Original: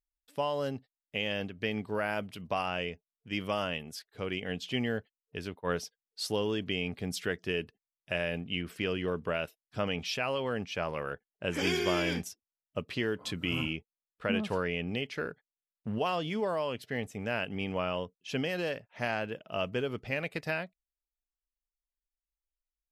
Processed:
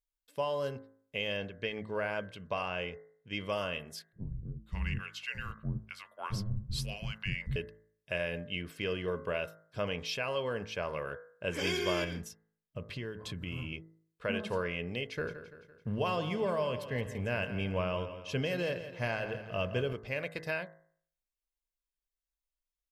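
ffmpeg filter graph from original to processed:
ffmpeg -i in.wav -filter_complex "[0:a]asettb=1/sr,asplit=3[link_01][link_02][link_03];[link_01]atrim=end=1.374[link_04];[link_02]atrim=start=1.37:end=3.48,asetpts=PTS-STARTPTS,afade=type=in:duration=0.004:curve=qsin,afade=type=out:start_time=2.106:duration=0.004:curve=qsin,lowpass=6900,equalizer=frequency=5000:width=6.3:gain=-5.5[link_05];[link_03]atrim=start=3.476[link_06];[link_04][link_05]acrossfade=duration=0.004:curve1=hsin:curve2=qsin[link_07];[link_07][link_06]acrossfade=duration=0.004:curve1=qsin:curve2=hsin,asettb=1/sr,asplit=3[link_08][link_09][link_10];[link_08]atrim=end=4.124[link_11];[link_09]atrim=start=4.12:end=7.56,asetpts=PTS-STARTPTS,afade=type=in:duration=0.004:curve=qsin,afade=type=out:start_time=3.436:duration=0.004:curve=qsin,afreqshift=-310,acrossover=split=450[link_12][link_13];[link_13]adelay=540[link_14];[link_12][link_14]amix=inputs=2:normalize=0,atrim=end_sample=151704[link_15];[link_10]atrim=start=7.556[link_16];[link_11][link_15]acrossfade=duration=0.004:curve1=hsin:curve2=qsin[link_17];[link_17][link_16]acrossfade=duration=0.004:curve1=qsin:curve2=hsin,asettb=1/sr,asplit=3[link_18][link_19][link_20];[link_18]atrim=end=12.044[link_21];[link_19]atrim=start=12.04:end=13.73,asetpts=PTS-STARTPTS,afade=type=in:duration=0.004:curve=qsin,afade=type=out:start_time=1.686:duration=0.004:curve=qsin,bass=frequency=250:gain=9,treble=frequency=4000:gain=-3,acompressor=threshold=-35dB:ratio=2.5:attack=3.2:release=140:knee=1:detection=peak[link_22];[link_20]atrim=start=13.726[link_23];[link_21][link_22]acrossfade=duration=0.004:curve1=hsin:curve2=qsin[link_24];[link_24][link_23]acrossfade=duration=0.004:curve1=qsin:curve2=hsin,asettb=1/sr,asplit=3[link_25][link_26][link_27];[link_25]atrim=end=15.064[link_28];[link_26]atrim=start=15.06:end=19.93,asetpts=PTS-STARTPTS,afade=type=in:duration=0.004:curve=qsin,afade=type=out:start_time=4.866:duration=0.004:curve=qsin,lowshelf=frequency=160:gain=10.5,aecho=1:1:169|338|507|676|845:0.251|0.126|0.0628|0.0314|0.0157,atrim=end_sample=214767[link_29];[link_27]atrim=start=19.926[link_30];[link_28][link_29]acrossfade=duration=0.004:curve1=hsin:curve2=qsin[link_31];[link_31][link_30]acrossfade=duration=0.004:curve1=qsin:curve2=hsin,aecho=1:1:1.9:0.36,bandreject=frequency=54.02:width_type=h:width=4,bandreject=frequency=108.04:width_type=h:width=4,bandreject=frequency=162.06:width_type=h:width=4,bandreject=frequency=216.08:width_type=h:width=4,bandreject=frequency=270.1:width_type=h:width=4,bandreject=frequency=324.12:width_type=h:width=4,bandreject=frequency=378.14:width_type=h:width=4,bandreject=frequency=432.16:width_type=h:width=4,bandreject=frequency=486.18:width_type=h:width=4,bandreject=frequency=540.2:width_type=h:width=4,bandreject=frequency=594.22:width_type=h:width=4,bandreject=frequency=648.24:width_type=h:width=4,bandreject=frequency=702.26:width_type=h:width=4,bandreject=frequency=756.28:width_type=h:width=4,bandreject=frequency=810.3:width_type=h:width=4,bandreject=frequency=864.32:width_type=h:width=4,bandreject=frequency=918.34:width_type=h:width=4,bandreject=frequency=972.36:width_type=h:width=4,bandreject=frequency=1026.38:width_type=h:width=4,bandreject=frequency=1080.4:width_type=h:width=4,bandreject=frequency=1134.42:width_type=h:width=4,bandreject=frequency=1188.44:width_type=h:width=4,bandreject=frequency=1242.46:width_type=h:width=4,bandreject=frequency=1296.48:width_type=h:width=4,bandreject=frequency=1350.5:width_type=h:width=4,bandreject=frequency=1404.52:width_type=h:width=4,bandreject=frequency=1458.54:width_type=h:width=4,bandreject=frequency=1512.56:width_type=h:width=4,bandreject=frequency=1566.58:width_type=h:width=4,bandreject=frequency=1620.6:width_type=h:width=4,bandreject=frequency=1674.62:width_type=h:width=4,bandreject=frequency=1728.64:width_type=h:width=4,bandreject=frequency=1782.66:width_type=h:width=4,bandreject=frequency=1836.68:width_type=h:width=4,bandreject=frequency=1890.7:width_type=h:width=4,bandreject=frequency=1944.72:width_type=h:width=4,bandreject=frequency=1998.74:width_type=h:width=4,bandreject=frequency=2052.76:width_type=h:width=4,volume=-2.5dB" out.wav

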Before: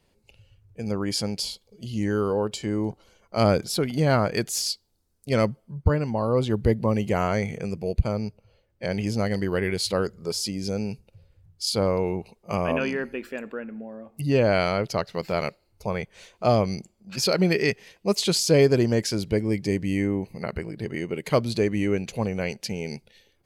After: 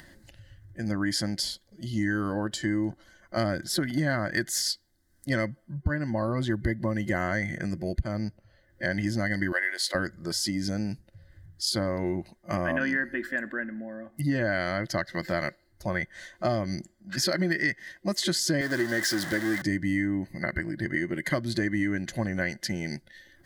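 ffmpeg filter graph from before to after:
ffmpeg -i in.wav -filter_complex "[0:a]asettb=1/sr,asplit=3[link_01][link_02][link_03];[link_01]atrim=end=9.524[link_04];[link_02]atrim=start=9.52:end=9.95,asetpts=PTS-STARTPTS,afade=type=in:duration=0.004:curve=qsin,afade=type=out:start_time=0.426:duration=0.004:curve=qsin,highpass=frequency=510:width=0.5412,highpass=frequency=510:width=1.3066,aeval=exprs='sgn(val(0))*max(abs(val(0))-0.00106,0)':channel_layout=same[link_05];[link_03]atrim=start=9.946[link_06];[link_04][link_05]acrossfade=duration=0.004:curve1=hsin:curve2=qsin[link_07];[link_07][link_06]acrossfade=duration=0.004:curve1=qsin:curve2=hsin,asettb=1/sr,asplit=3[link_08][link_09][link_10];[link_08]atrim=end=18.614[link_11];[link_09]atrim=start=18.61:end=19.62,asetpts=PTS-STARTPTS,afade=type=in:duration=0.004:curve=qsin,afade=type=out:start_time=1.006:duration=0.004:curve=qsin,aeval=exprs='val(0)+0.5*0.0596*sgn(val(0))':channel_layout=same,highpass=frequency=450:poles=1[link_12];[link_10]atrim=start=19.616[link_13];[link_11][link_12]acrossfade=duration=0.004:curve1=hsin:curve2=qsin[link_14];[link_14][link_13]acrossfade=duration=0.004:curve1=qsin:curve2=hsin,acompressor=mode=upward:threshold=-42dB:ratio=2.5,superequalizer=6b=1.78:7b=0.251:9b=0.631:11b=3.98:12b=0.398,acompressor=threshold=-23dB:ratio=6" out.wav

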